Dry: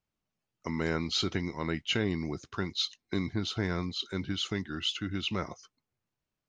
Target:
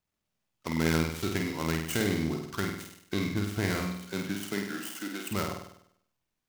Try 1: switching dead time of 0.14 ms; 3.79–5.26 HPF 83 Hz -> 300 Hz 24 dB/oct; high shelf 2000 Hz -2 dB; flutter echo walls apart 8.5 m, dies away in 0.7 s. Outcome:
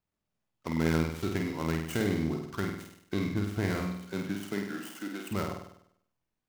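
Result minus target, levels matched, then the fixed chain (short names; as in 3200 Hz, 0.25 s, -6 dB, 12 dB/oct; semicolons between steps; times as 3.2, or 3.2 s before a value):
4000 Hz band -5.0 dB
switching dead time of 0.14 ms; 3.79–5.26 HPF 83 Hz -> 300 Hz 24 dB/oct; high shelf 2000 Hz +5.5 dB; flutter echo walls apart 8.5 m, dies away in 0.7 s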